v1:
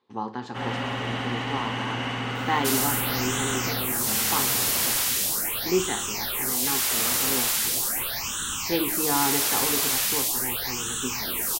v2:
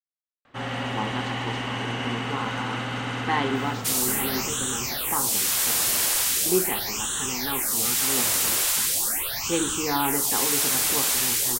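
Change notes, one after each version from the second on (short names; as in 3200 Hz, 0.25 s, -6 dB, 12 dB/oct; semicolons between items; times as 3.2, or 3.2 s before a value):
speech: entry +0.80 s; second sound: entry +1.20 s; master: add bell 8300 Hz +3.5 dB 0.7 oct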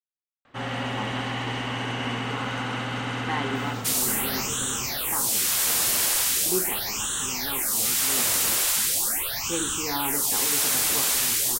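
speech -5.0 dB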